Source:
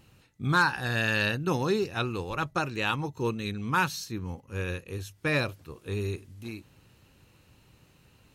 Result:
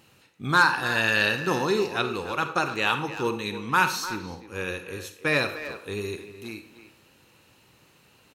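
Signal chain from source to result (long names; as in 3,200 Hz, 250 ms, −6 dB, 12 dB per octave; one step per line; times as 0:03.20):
high-pass filter 320 Hz 6 dB per octave
far-end echo of a speakerphone 300 ms, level −11 dB
on a send at −9 dB: convolution reverb RT60 0.55 s, pre-delay 39 ms
on the sum: level +4.5 dB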